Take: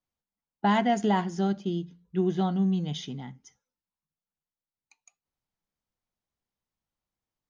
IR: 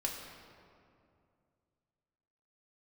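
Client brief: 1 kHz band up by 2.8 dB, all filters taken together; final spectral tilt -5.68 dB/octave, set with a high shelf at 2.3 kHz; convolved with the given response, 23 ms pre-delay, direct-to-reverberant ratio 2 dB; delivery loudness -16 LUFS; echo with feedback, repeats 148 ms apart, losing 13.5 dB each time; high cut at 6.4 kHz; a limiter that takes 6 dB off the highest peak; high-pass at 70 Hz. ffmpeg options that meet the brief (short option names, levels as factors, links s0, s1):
-filter_complex "[0:a]highpass=70,lowpass=6400,equalizer=f=1000:t=o:g=5,highshelf=f=2300:g=-7.5,alimiter=limit=0.133:level=0:latency=1,aecho=1:1:148|296:0.211|0.0444,asplit=2[s0][s1];[1:a]atrim=start_sample=2205,adelay=23[s2];[s1][s2]afir=irnorm=-1:irlink=0,volume=0.596[s3];[s0][s3]amix=inputs=2:normalize=0,volume=3.76"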